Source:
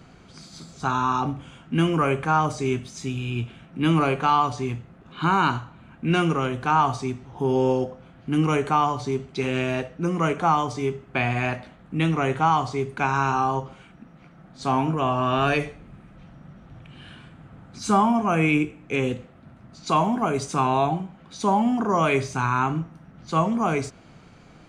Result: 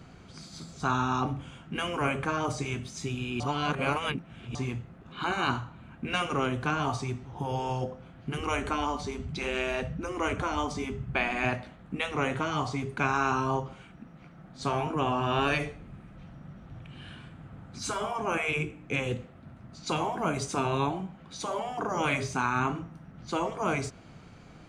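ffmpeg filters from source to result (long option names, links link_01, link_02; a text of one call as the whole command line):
ffmpeg -i in.wav -filter_complex "[0:a]asettb=1/sr,asplit=3[link_01][link_02][link_03];[link_01]atrim=end=8.394[link_04];[link_02]atrim=start=8.39:end=11.44,asetpts=PTS-STARTPTS,afade=type=in:duration=0.004:curve=qsin,afade=type=out:start_time=3.046:duration=0.004:curve=qsin,lowshelf=frequency=220:width_type=q:width=1.5:gain=13[link_05];[link_03]atrim=start=11.436[link_06];[link_04][link_05]acrossfade=duration=0.004:curve1=hsin:curve2=qsin[link_07];[link_07][link_06]acrossfade=duration=0.004:curve1=qsin:curve2=hsin,asplit=3[link_08][link_09][link_10];[link_08]atrim=end=3.402[link_11];[link_09]atrim=start=3.398:end=4.552,asetpts=PTS-STARTPTS,areverse[link_12];[link_10]atrim=start=4.548[link_13];[link_11][link_12]acrossfade=duration=0.004:curve1=hsin:curve2=hsin[link_14];[link_14][link_13]acrossfade=duration=0.004:curve1=hsin:curve2=hsin,afftfilt=real='re*lt(hypot(re,im),0.398)':imag='im*lt(hypot(re,im),0.398)':win_size=1024:overlap=0.75,equalizer=frequency=81:width_type=o:width=1.5:gain=3.5,volume=-2dB" out.wav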